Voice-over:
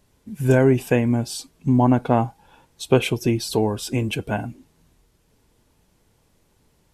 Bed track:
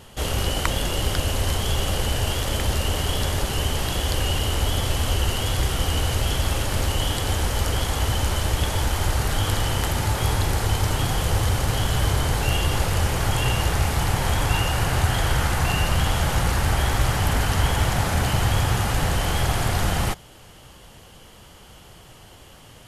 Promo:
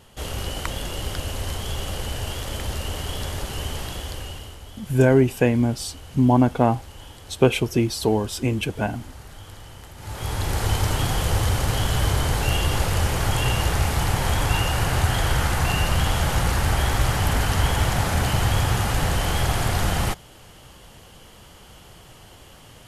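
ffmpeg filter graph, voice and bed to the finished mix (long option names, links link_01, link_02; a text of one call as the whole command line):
ffmpeg -i stem1.wav -i stem2.wav -filter_complex "[0:a]adelay=4500,volume=0dB[link_01];[1:a]volume=13.5dB,afade=type=out:start_time=3.76:duration=0.83:silence=0.211349,afade=type=in:start_time=9.97:duration=0.71:silence=0.112202[link_02];[link_01][link_02]amix=inputs=2:normalize=0" out.wav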